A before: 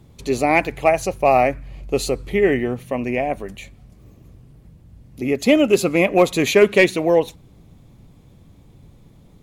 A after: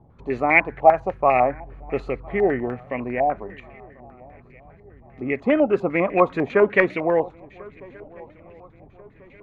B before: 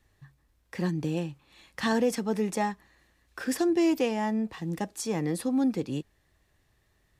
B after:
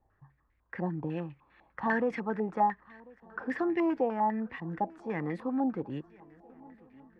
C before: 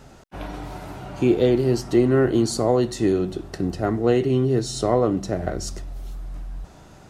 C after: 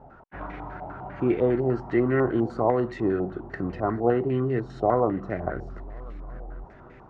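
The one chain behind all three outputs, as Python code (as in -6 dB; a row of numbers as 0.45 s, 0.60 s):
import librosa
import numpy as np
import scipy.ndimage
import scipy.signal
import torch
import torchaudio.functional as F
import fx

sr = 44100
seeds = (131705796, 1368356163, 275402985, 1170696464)

y = fx.echo_swing(x, sr, ms=1390, ratio=3, feedback_pct=42, wet_db=-24)
y = fx.filter_held_lowpass(y, sr, hz=10.0, low_hz=800.0, high_hz=2100.0)
y = y * 10.0 ** (-5.5 / 20.0)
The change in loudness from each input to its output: -2.5 LU, -3.0 LU, -4.0 LU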